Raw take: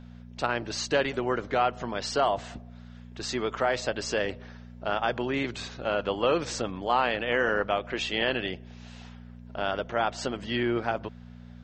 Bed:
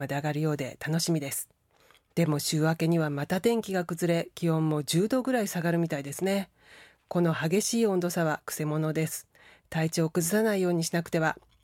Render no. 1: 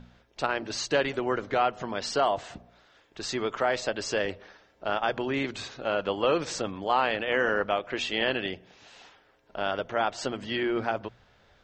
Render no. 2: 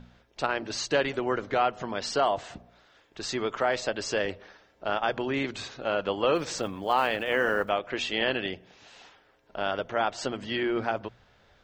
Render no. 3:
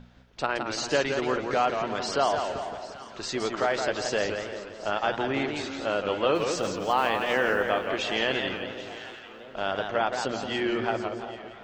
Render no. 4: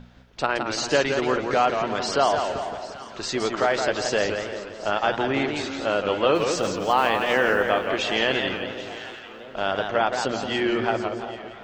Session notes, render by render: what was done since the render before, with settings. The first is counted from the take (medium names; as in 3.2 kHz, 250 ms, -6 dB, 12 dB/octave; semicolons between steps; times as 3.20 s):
de-hum 60 Hz, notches 4
6.35–7.70 s: block-companded coder 7-bit
echo whose repeats swap between lows and highs 394 ms, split 1 kHz, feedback 67%, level -12 dB; modulated delay 170 ms, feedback 44%, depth 148 cents, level -6 dB
trim +4 dB